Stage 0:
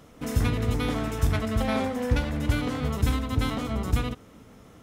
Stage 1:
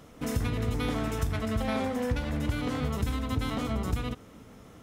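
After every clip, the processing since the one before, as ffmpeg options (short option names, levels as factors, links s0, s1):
-af "acompressor=threshold=0.0562:ratio=6"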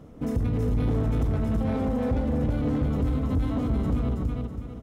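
-af "tiltshelf=f=930:g=9,aecho=1:1:325|650|975|1300|1625:0.708|0.248|0.0867|0.0304|0.0106,asoftclip=type=tanh:threshold=0.15,volume=0.794"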